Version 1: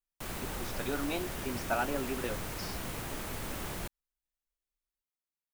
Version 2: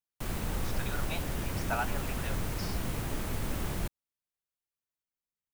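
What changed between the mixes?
speech: add high-pass 730 Hz 24 dB/octave; master: add bass shelf 260 Hz +9 dB

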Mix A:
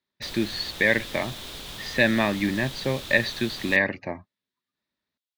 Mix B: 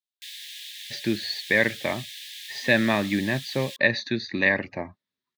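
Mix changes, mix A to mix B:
speech: entry +0.70 s; background: add brick-wall FIR high-pass 1.6 kHz

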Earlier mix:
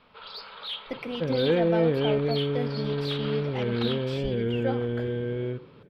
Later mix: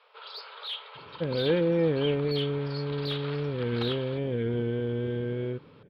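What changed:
speech: muted; second sound: add peaking EQ 11 kHz +5.5 dB 0.22 oct; reverb: off

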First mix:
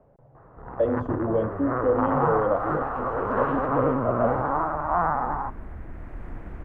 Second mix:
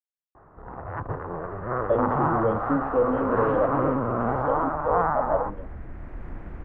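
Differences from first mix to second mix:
speech: entry +1.10 s; master: add distance through air 60 m

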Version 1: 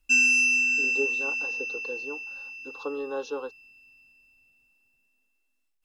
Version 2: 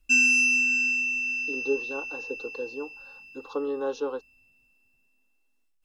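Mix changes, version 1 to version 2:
speech: entry +0.70 s; master: add bass shelf 490 Hz +5.5 dB

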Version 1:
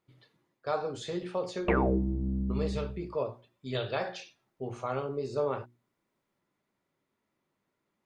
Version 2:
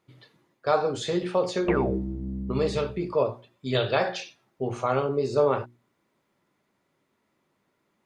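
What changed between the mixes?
speech +8.5 dB; master: add bass shelf 63 Hz -6 dB

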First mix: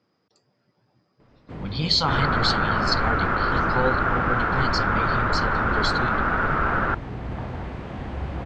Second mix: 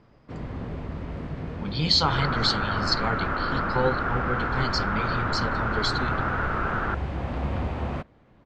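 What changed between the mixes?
first sound: entry -1.20 s; second sound -5.0 dB

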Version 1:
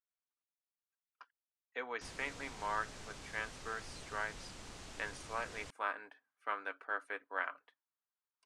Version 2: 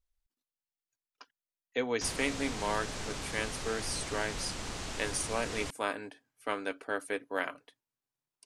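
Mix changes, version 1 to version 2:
speech: remove band-pass filter 1.3 kHz, Q 1.7; background +11.5 dB

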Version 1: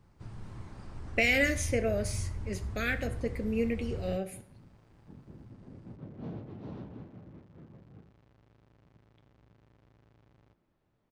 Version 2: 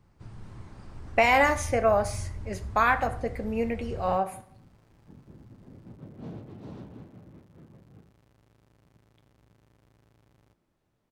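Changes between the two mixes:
speech: remove Butterworth band-stop 970 Hz, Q 0.67; second sound: remove distance through air 130 m

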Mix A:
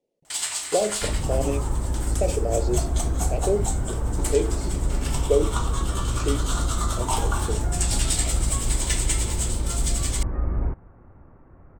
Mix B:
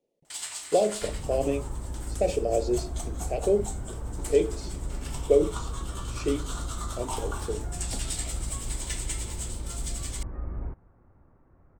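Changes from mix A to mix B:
first sound -8.5 dB; second sound -9.5 dB

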